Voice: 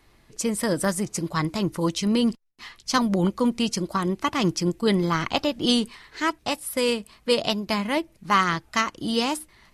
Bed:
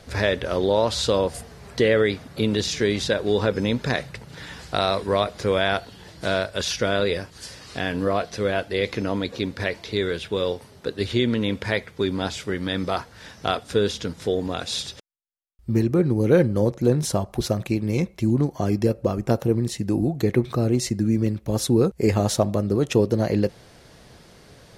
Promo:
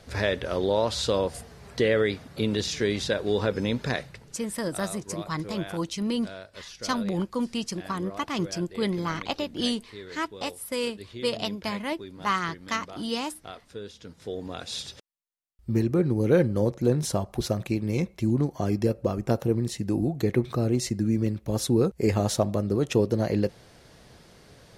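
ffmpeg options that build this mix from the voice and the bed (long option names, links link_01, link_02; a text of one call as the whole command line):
ffmpeg -i stem1.wav -i stem2.wav -filter_complex "[0:a]adelay=3950,volume=-6dB[link_01];[1:a]volume=10.5dB,afade=type=out:start_time=3.9:duration=0.52:silence=0.199526,afade=type=in:start_time=13.95:duration=1.24:silence=0.188365[link_02];[link_01][link_02]amix=inputs=2:normalize=0" out.wav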